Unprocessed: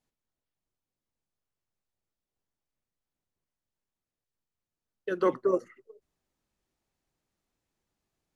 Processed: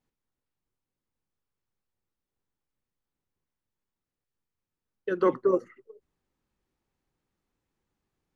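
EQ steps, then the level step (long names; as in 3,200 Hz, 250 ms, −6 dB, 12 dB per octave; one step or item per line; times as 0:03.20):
parametric band 650 Hz −8 dB 0.24 octaves
high-shelf EQ 3,200 Hz −9.5 dB
+3.0 dB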